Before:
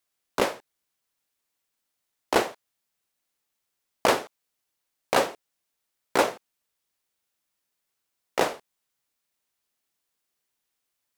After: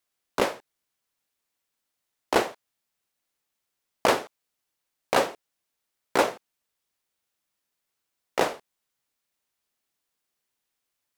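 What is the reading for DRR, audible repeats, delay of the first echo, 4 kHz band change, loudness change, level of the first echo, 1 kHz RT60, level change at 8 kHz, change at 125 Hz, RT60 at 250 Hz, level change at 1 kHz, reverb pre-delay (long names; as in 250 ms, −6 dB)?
no reverb audible, no echo audible, no echo audible, −0.5 dB, 0.0 dB, no echo audible, no reverb audible, −1.5 dB, 0.0 dB, no reverb audible, 0.0 dB, no reverb audible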